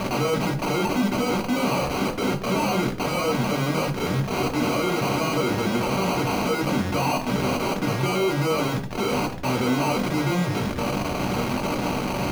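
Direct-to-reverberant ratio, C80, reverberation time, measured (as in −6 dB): 2.0 dB, 17.0 dB, 0.45 s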